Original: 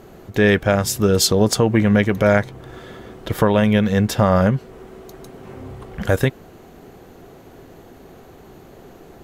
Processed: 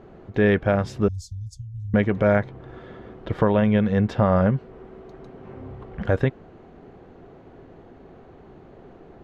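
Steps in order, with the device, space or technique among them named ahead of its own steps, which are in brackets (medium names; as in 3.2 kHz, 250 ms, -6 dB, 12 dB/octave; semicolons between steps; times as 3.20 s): 1.08–1.94 s: inverse Chebyshev band-stop 270–2200 Hz, stop band 60 dB; phone in a pocket (low-pass 3.7 kHz 12 dB/octave; treble shelf 2.4 kHz -9 dB); trim -3 dB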